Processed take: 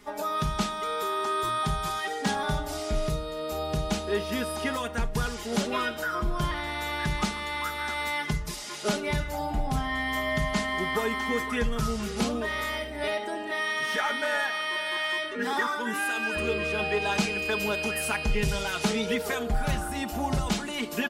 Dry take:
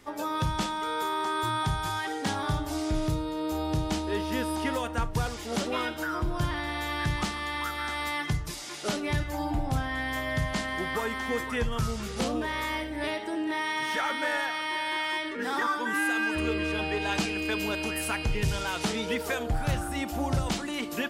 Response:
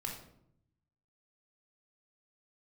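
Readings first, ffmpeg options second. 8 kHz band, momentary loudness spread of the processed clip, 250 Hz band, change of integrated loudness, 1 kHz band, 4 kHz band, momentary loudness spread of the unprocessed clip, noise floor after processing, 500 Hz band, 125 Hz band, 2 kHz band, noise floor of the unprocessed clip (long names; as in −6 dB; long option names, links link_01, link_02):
+1.5 dB, 4 LU, −0.5 dB, +1.0 dB, +0.5 dB, +1.5 dB, 3 LU, −36 dBFS, +3.0 dB, −1.5 dB, +1.5 dB, −37 dBFS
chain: -af "aecho=1:1:4.8:0.71"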